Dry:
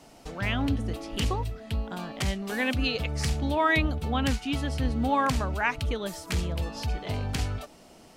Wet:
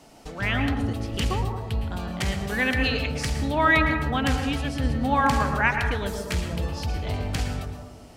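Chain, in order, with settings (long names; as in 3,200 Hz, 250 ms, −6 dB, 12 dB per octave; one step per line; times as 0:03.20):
on a send at −5 dB: convolution reverb RT60 0.95 s, pre-delay 102 ms
on the sum: dynamic equaliser 1,700 Hz, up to +5 dB, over −39 dBFS, Q 1.5
feedback echo with a low-pass in the loop 117 ms, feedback 57%, low-pass 890 Hz, level −7.5 dB
level +1 dB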